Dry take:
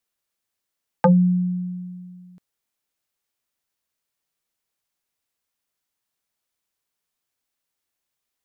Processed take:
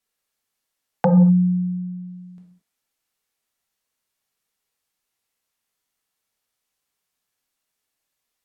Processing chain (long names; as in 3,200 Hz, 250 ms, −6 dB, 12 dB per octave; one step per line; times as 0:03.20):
reverb whose tail is shaped and stops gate 250 ms falling, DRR −1 dB
treble cut that deepens with the level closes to 640 Hz, closed at −22 dBFS